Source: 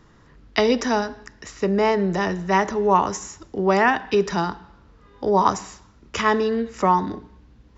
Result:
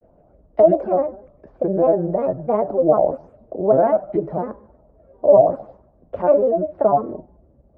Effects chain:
granular cloud, spray 19 ms, pitch spread up and down by 7 semitones
low-pass with resonance 610 Hz, resonance Q 6.6
level −3 dB

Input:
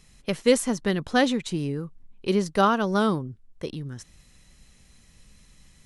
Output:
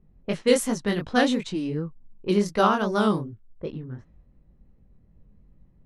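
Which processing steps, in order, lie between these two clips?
low-pass that shuts in the quiet parts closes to 480 Hz, open at −21 dBFS
chorus effect 2.7 Hz, delay 18 ms, depth 6.7 ms
level +3 dB

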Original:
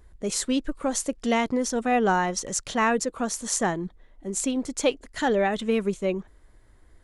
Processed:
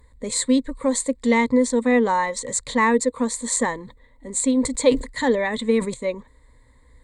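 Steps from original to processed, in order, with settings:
EQ curve with evenly spaced ripples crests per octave 1, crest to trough 16 dB
0:03.52–0:05.94: level that may fall only so fast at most 140 dB per second

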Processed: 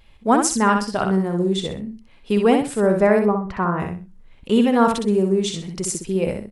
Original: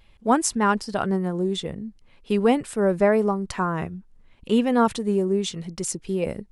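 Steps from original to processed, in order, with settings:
0:03.19–0:03.80: low-pass filter 1,900 Hz 12 dB per octave
repeating echo 63 ms, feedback 26%, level −5 dB
level +2.5 dB

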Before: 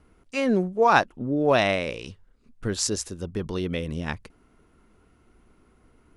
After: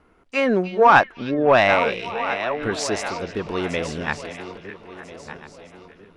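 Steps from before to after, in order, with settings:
feedback delay that plays each chunk backwards 672 ms, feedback 57%, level −11.5 dB
mid-hump overdrive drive 13 dB, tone 1,500 Hz, clips at −3 dBFS
dynamic equaliser 1,900 Hz, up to +4 dB, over −38 dBFS, Q 0.71
on a send: echo through a band-pass that steps 303 ms, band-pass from 3,700 Hz, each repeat −0.7 octaves, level −9.5 dB
on the sum: level +1 dB

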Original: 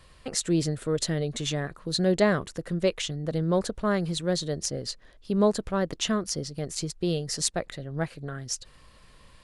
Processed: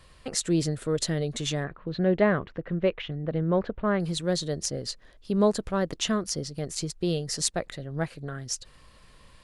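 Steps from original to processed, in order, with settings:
0:01.64–0:04.00: low-pass filter 2,800 Hz 24 dB per octave

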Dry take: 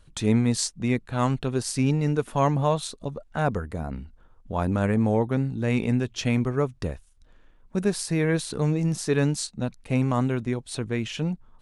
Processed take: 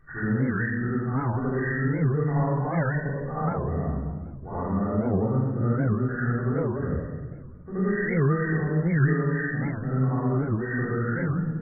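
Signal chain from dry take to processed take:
hearing-aid frequency compression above 1,100 Hz 4 to 1
low-shelf EQ 89 Hz −7.5 dB
downward compressor 10 to 1, threshold −25 dBFS, peak gain reduction 10 dB
high-frequency loss of the air 460 metres
backwards echo 75 ms −6.5 dB
rectangular room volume 1,200 cubic metres, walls mixed, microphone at 3.6 metres
wow of a warped record 78 rpm, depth 250 cents
level −4.5 dB

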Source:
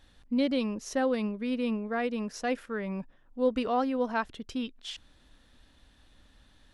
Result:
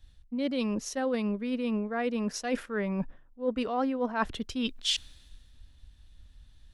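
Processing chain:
reversed playback
downward compressor 8 to 1, threshold −36 dBFS, peak gain reduction 15 dB
reversed playback
multiband upward and downward expander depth 70%
level +9 dB

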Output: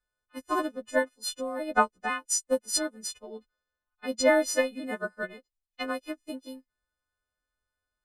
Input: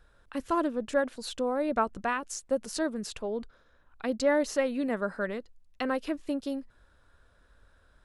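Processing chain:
every partial snapped to a pitch grid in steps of 3 semitones
expander for the loud parts 2.5 to 1, over −43 dBFS
level +5.5 dB

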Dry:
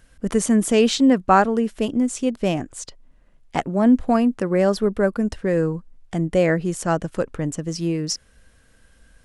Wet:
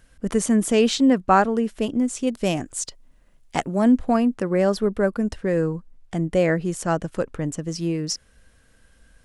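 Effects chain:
0:02.27–0:03.92: high-shelf EQ 4,400 Hz +10 dB
level −1.5 dB

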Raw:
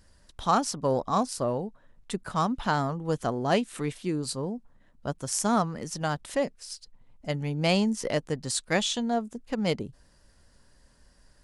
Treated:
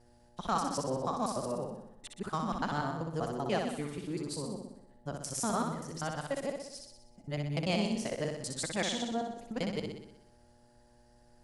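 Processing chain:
reversed piece by piece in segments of 97 ms
hum with harmonics 120 Hz, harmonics 7, −57 dBFS −3 dB per octave
flutter between parallel walls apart 10.6 metres, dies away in 0.79 s
level −8 dB

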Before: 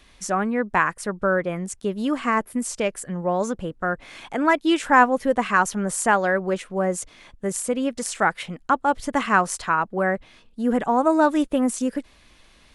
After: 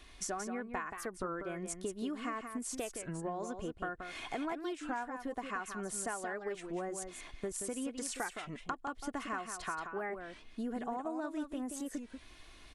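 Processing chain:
comb filter 2.8 ms, depth 45%
downward compressor 12 to 1, threshold −32 dBFS, peak gain reduction 23.5 dB
single-tap delay 178 ms −7.5 dB
wow of a warped record 33 1/3 rpm, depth 160 cents
level −4 dB

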